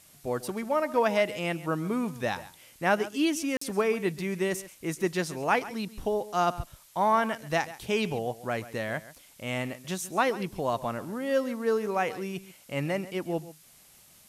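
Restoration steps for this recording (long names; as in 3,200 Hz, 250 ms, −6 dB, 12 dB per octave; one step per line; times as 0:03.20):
repair the gap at 0:03.57, 44 ms
broadband denoise 17 dB, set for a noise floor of −56 dBFS
echo removal 137 ms −16.5 dB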